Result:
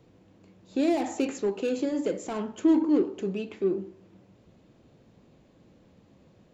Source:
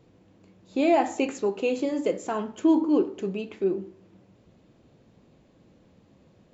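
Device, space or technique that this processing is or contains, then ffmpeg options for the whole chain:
one-band saturation: -filter_complex "[0:a]acrossover=split=480|3800[link_01][link_02][link_03];[link_02]asoftclip=type=tanh:threshold=-35dB[link_04];[link_01][link_04][link_03]amix=inputs=3:normalize=0"

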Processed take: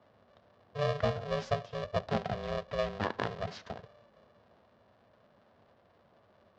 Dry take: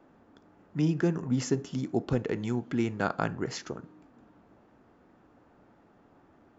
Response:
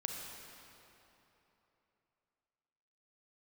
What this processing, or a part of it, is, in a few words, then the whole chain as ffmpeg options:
ring modulator pedal into a guitar cabinet: -af "aeval=exprs='val(0)*sgn(sin(2*PI*290*n/s))':channel_layout=same,highpass=89,equalizer=frequency=100:width_type=q:width=4:gain=7,equalizer=frequency=220:width_type=q:width=4:gain=7,equalizer=frequency=670:width_type=q:width=4:gain=5,equalizer=frequency=2300:width_type=q:width=4:gain=-4,lowpass=frequency=4600:width=0.5412,lowpass=frequency=4600:width=1.3066,volume=-5.5dB"

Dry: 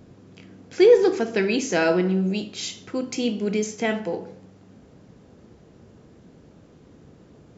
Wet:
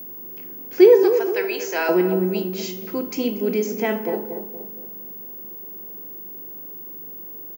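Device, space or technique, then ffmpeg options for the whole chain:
old television with a line whistle: -filter_complex "[0:a]asettb=1/sr,asplit=3[link_01][link_02][link_03];[link_01]atrim=end=1.034[link_04];[link_02]atrim=start=1.03:end=1.89,asetpts=PTS-STARTPTS,afade=type=in:duration=0.004:curve=qsin,afade=type=out:start_time=0.856:duration=0.004:curve=qsin,highpass=710[link_05];[link_03]atrim=start=1.886[link_06];[link_04][link_05]acrossfade=duration=0.004:curve1=hsin:curve2=qsin[link_07];[link_07][link_06]acrossfade=duration=0.004:curve1=qsin:curve2=hsin,highpass=frequency=190:width=0.5412,highpass=frequency=190:width=1.3066,equalizer=frequency=380:width_type=q:width=4:gain=6,equalizer=frequency=950:width_type=q:width=4:gain=6,equalizer=frequency=3600:width_type=q:width=4:gain=-7,lowpass=frequency=6600:width=0.5412,lowpass=frequency=6600:width=1.3066,aeval=exprs='val(0)+0.02*sin(2*PI*15625*n/s)':channel_layout=same,asplit=2[link_08][link_09];[link_09]adelay=235,lowpass=frequency=800:poles=1,volume=-6.5dB,asplit=2[link_10][link_11];[link_11]adelay=235,lowpass=frequency=800:poles=1,volume=0.51,asplit=2[link_12][link_13];[link_13]adelay=235,lowpass=frequency=800:poles=1,volume=0.51,asplit=2[link_14][link_15];[link_15]adelay=235,lowpass=frequency=800:poles=1,volume=0.51,asplit=2[link_16][link_17];[link_17]adelay=235,lowpass=frequency=800:poles=1,volume=0.51,asplit=2[link_18][link_19];[link_19]adelay=235,lowpass=frequency=800:poles=1,volume=0.51[link_20];[link_08][link_10][link_12][link_14][link_16][link_18][link_20]amix=inputs=7:normalize=0"

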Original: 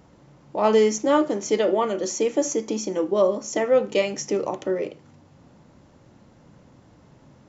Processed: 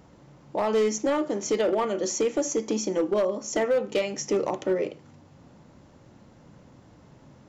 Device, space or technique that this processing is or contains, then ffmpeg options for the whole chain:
limiter into clipper: -af "alimiter=limit=-14dB:level=0:latency=1:release=335,asoftclip=type=hard:threshold=-18dB"

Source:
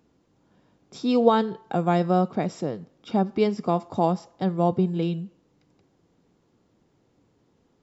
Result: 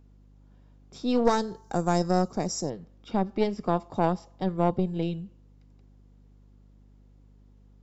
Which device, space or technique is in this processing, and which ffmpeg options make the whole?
valve amplifier with mains hum: -filter_complex "[0:a]aeval=exprs='(tanh(4.47*val(0)+0.75)-tanh(0.75))/4.47':channel_layout=same,aeval=exprs='val(0)+0.002*(sin(2*PI*50*n/s)+sin(2*PI*2*50*n/s)/2+sin(2*PI*3*50*n/s)/3+sin(2*PI*4*50*n/s)/4+sin(2*PI*5*50*n/s)/5)':channel_layout=same,asettb=1/sr,asplit=3[link_01][link_02][link_03];[link_01]atrim=end=1.254[link_04];[link_02]atrim=start=1.25:end=2.7,asetpts=PTS-STARTPTS,afade=type=in:duration=0.004:curve=qsin,afade=type=out:start_time=1.446:duration=0.004:curve=qsin,highshelf=frequency=4300:width_type=q:width=3:gain=12[link_05];[link_03]atrim=start=2.696[link_06];[link_04][link_05]acrossfade=duration=0.004:curve1=hsin:curve2=qsin[link_07];[link_07][link_06]acrossfade=duration=0.004:curve1=qsin:curve2=hsin"

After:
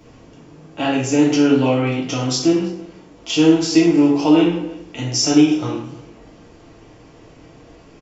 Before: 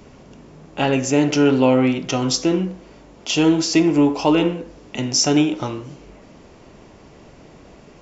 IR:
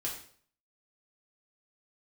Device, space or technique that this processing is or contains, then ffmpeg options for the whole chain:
bathroom: -filter_complex "[0:a]asplit=2[link_01][link_02];[link_02]adelay=326.5,volume=-21dB,highshelf=frequency=4000:gain=-7.35[link_03];[link_01][link_03]amix=inputs=2:normalize=0[link_04];[1:a]atrim=start_sample=2205[link_05];[link_04][link_05]afir=irnorm=-1:irlink=0,volume=-2dB"

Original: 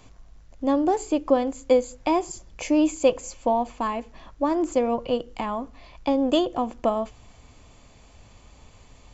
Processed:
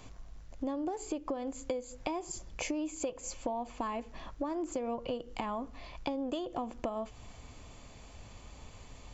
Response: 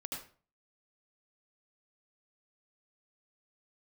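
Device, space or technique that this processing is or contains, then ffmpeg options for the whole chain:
serial compression, leveller first: -af "acompressor=threshold=-24dB:ratio=2.5,acompressor=threshold=-34dB:ratio=4"

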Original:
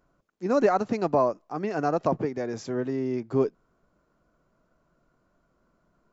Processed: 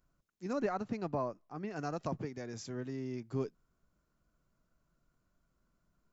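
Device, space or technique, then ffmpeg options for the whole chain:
smiley-face EQ: -filter_complex "[0:a]lowshelf=frequency=170:gain=3.5,equalizer=frequency=550:width_type=o:width=2.9:gain=-9,highshelf=frequency=5600:gain=5.5,asettb=1/sr,asplit=3[link_01][link_02][link_03];[link_01]atrim=end=0.534[link_04];[link_02]atrim=start=0.53:end=1.76,asetpts=PTS-STARTPTS,afade=type=in:duration=0.004:curve=qsin,afade=type=out:start_time=1.226:duration=0.004:curve=qsin,aemphasis=mode=reproduction:type=75fm[link_05];[link_03]atrim=start=1.756[link_06];[link_04][link_05]acrossfade=duration=0.004:curve1=hsin:curve2=qsin[link_07];[link_07][link_06]acrossfade=duration=0.004:curve1=qsin:curve2=hsin,volume=-6dB"

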